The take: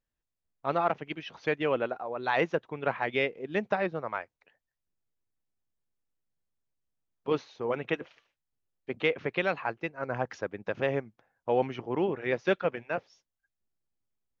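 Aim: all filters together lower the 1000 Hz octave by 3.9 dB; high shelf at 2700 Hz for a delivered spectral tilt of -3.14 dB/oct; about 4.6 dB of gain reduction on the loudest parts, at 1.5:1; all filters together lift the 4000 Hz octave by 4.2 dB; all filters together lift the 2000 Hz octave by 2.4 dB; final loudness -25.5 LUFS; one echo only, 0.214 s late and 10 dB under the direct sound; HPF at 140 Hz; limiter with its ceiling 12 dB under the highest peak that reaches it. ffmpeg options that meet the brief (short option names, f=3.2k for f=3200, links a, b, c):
-af "highpass=140,equalizer=f=1k:t=o:g=-6.5,equalizer=f=2k:t=o:g=4.5,highshelf=f=2.7k:g=-4,equalizer=f=4k:t=o:g=7.5,acompressor=threshold=-34dB:ratio=1.5,alimiter=level_in=2dB:limit=-24dB:level=0:latency=1,volume=-2dB,aecho=1:1:214:0.316,volume=13.5dB"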